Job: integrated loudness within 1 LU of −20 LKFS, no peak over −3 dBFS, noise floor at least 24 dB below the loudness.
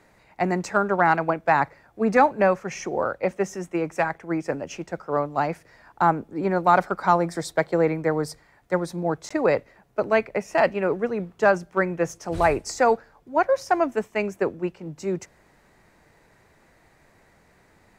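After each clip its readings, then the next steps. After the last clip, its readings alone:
number of dropouts 1; longest dropout 15 ms; integrated loudness −24.0 LKFS; sample peak −4.5 dBFS; target loudness −20.0 LKFS
→ repair the gap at 0:09.29, 15 ms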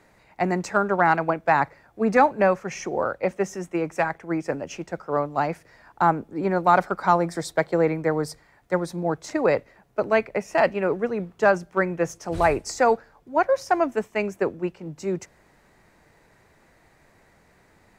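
number of dropouts 0; integrated loudness −24.0 LKFS; sample peak −4.5 dBFS; target loudness −20.0 LKFS
→ level +4 dB
brickwall limiter −3 dBFS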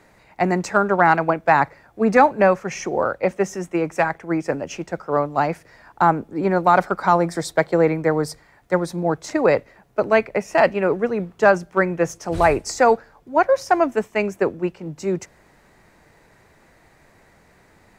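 integrated loudness −20.5 LKFS; sample peak −3.0 dBFS; background noise floor −55 dBFS

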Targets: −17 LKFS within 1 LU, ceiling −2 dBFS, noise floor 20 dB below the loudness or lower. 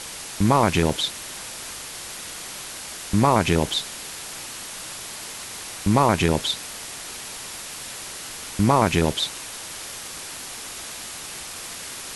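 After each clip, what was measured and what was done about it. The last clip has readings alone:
number of dropouts 2; longest dropout 2.1 ms; background noise floor −36 dBFS; target noise floor −46 dBFS; integrated loudness −25.5 LKFS; sample peak −5.0 dBFS; target loudness −17.0 LKFS
→ repair the gap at 0:00.89/0:03.72, 2.1 ms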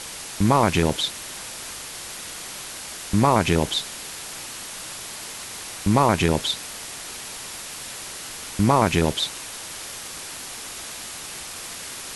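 number of dropouts 0; background noise floor −36 dBFS; target noise floor −46 dBFS
→ broadband denoise 10 dB, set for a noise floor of −36 dBFS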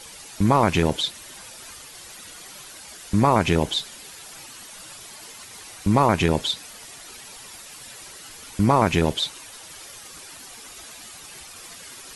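background noise floor −43 dBFS; integrated loudness −21.5 LKFS; sample peak −5.0 dBFS; target loudness −17.0 LKFS
→ level +4.5 dB
brickwall limiter −2 dBFS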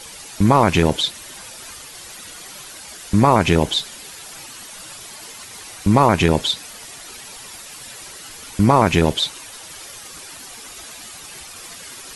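integrated loudness −17.0 LKFS; sample peak −2.0 dBFS; background noise floor −38 dBFS

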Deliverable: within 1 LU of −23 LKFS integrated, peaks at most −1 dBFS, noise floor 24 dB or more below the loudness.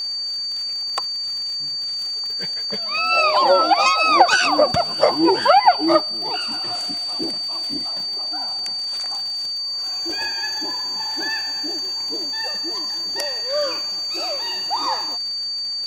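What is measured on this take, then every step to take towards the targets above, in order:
crackle rate 51 per second; interfering tone 4,600 Hz; level of the tone −23 dBFS; integrated loudness −19.5 LKFS; sample peak −1.5 dBFS; target loudness −23.0 LKFS
→ click removal
notch filter 4,600 Hz, Q 30
level −3.5 dB

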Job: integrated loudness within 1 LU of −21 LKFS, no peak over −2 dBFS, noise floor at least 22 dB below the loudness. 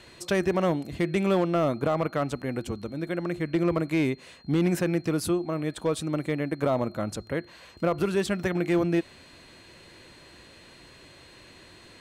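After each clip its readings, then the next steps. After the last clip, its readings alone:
share of clipped samples 0.6%; peaks flattened at −17.0 dBFS; interfering tone 4,200 Hz; level of the tone −56 dBFS; integrated loudness −27.5 LKFS; sample peak −17.0 dBFS; target loudness −21.0 LKFS
→ clipped peaks rebuilt −17 dBFS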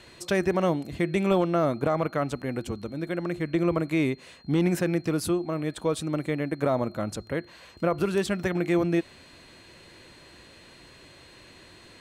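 share of clipped samples 0.0%; interfering tone 4,200 Hz; level of the tone −56 dBFS
→ notch filter 4,200 Hz, Q 30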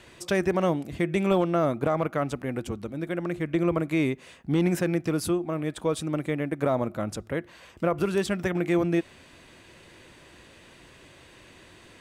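interfering tone none found; integrated loudness −27.5 LKFS; sample peak −12.0 dBFS; target loudness −21.0 LKFS
→ level +6.5 dB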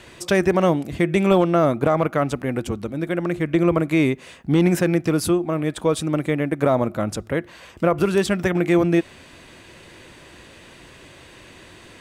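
integrated loudness −21.0 LKFS; sample peak −5.5 dBFS; background noise floor −46 dBFS

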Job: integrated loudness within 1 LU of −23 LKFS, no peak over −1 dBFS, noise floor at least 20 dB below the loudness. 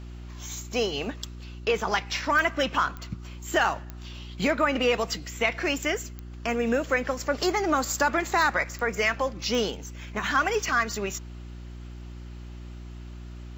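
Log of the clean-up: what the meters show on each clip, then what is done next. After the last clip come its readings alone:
number of clicks 7; mains hum 60 Hz; hum harmonics up to 360 Hz; level of the hum −37 dBFS; integrated loudness −26.5 LKFS; sample peak −10.5 dBFS; target loudness −23.0 LKFS
→ click removal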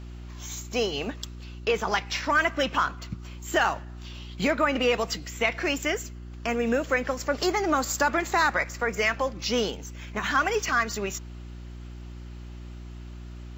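number of clicks 0; mains hum 60 Hz; hum harmonics up to 360 Hz; level of the hum −37 dBFS
→ hum removal 60 Hz, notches 6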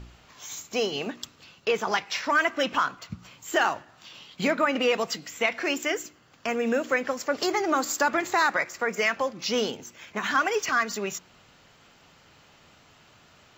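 mains hum none found; integrated loudness −26.5 LKFS; sample peak −10.0 dBFS; target loudness −23.0 LKFS
→ level +3.5 dB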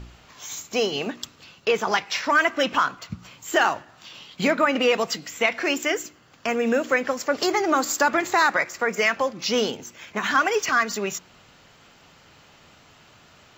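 integrated loudness −23.0 LKFS; sample peak −6.5 dBFS; background noise floor −54 dBFS

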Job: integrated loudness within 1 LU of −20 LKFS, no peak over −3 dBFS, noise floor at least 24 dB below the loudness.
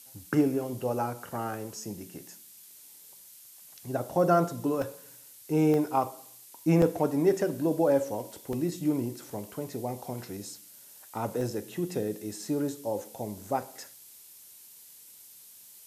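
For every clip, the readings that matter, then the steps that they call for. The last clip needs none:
number of dropouts 5; longest dropout 1.7 ms; background noise floor −52 dBFS; target noise floor −54 dBFS; integrated loudness −30.0 LKFS; sample peak −10.0 dBFS; target loudness −20.0 LKFS
→ repair the gap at 0:04.82/0:05.74/0:06.82/0:08.53/0:11.41, 1.7 ms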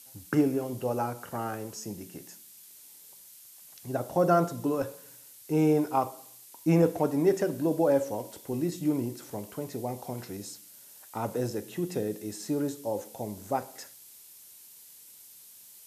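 number of dropouts 0; background noise floor −52 dBFS; target noise floor −54 dBFS
→ noise reduction from a noise print 6 dB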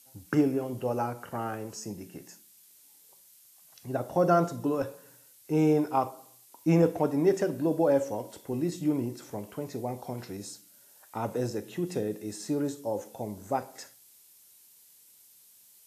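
background noise floor −58 dBFS; integrated loudness −30.0 LKFS; sample peak −10.0 dBFS; target loudness −20.0 LKFS
→ level +10 dB
brickwall limiter −3 dBFS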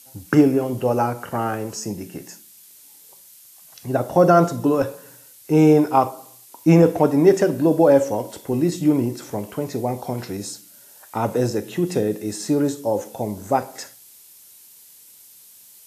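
integrated loudness −20.0 LKFS; sample peak −3.0 dBFS; background noise floor −48 dBFS

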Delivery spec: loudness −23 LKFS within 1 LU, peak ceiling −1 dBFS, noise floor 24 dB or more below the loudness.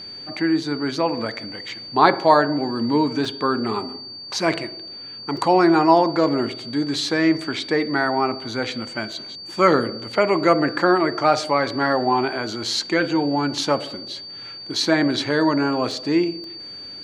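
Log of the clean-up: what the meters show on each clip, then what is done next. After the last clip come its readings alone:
number of dropouts 6; longest dropout 2.0 ms; interfering tone 4,600 Hz; level of the tone −34 dBFS; integrated loudness −20.5 LKFS; sample peak −1.5 dBFS; target loudness −23.0 LKFS
→ repair the gap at 0:01.69/0:03.25/0:05.37/0:09.12/0:15.91/0:16.44, 2 ms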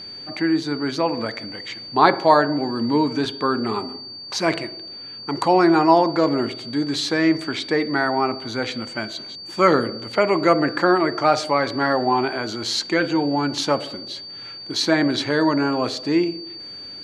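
number of dropouts 0; interfering tone 4,600 Hz; level of the tone −34 dBFS
→ notch filter 4,600 Hz, Q 30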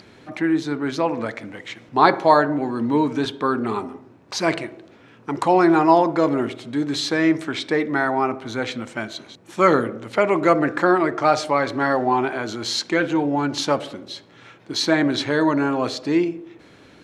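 interfering tone none found; integrated loudness −20.5 LKFS; sample peak −1.5 dBFS; target loudness −23.0 LKFS
→ level −2.5 dB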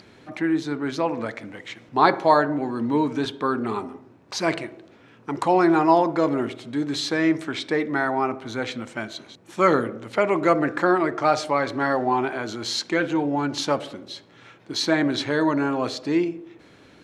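integrated loudness −23.0 LKFS; sample peak −4.0 dBFS; background noise floor −52 dBFS

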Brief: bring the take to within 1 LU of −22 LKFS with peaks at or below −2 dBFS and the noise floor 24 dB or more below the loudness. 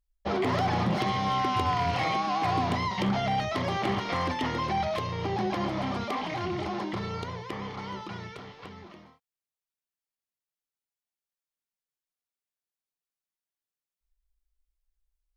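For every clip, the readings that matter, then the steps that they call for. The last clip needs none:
share of clipped samples 0.3%; peaks flattened at −20.0 dBFS; integrated loudness −29.5 LKFS; sample peak −20.0 dBFS; target loudness −22.0 LKFS
→ clipped peaks rebuilt −20 dBFS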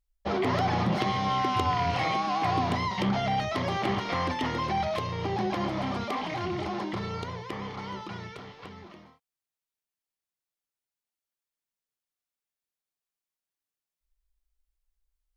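share of clipped samples 0.0%; integrated loudness −29.0 LKFS; sample peak −12.0 dBFS; target loudness −22.0 LKFS
→ level +7 dB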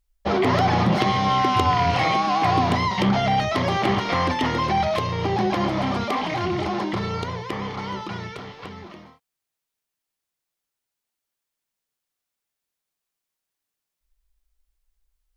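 integrated loudness −22.0 LKFS; sample peak −5.0 dBFS; background noise floor −84 dBFS

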